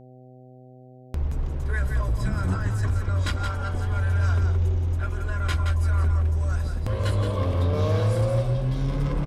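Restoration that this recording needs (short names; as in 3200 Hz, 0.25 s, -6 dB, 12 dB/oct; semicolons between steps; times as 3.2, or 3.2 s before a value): clip repair -16 dBFS; de-hum 127.2 Hz, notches 6; inverse comb 0.172 s -6.5 dB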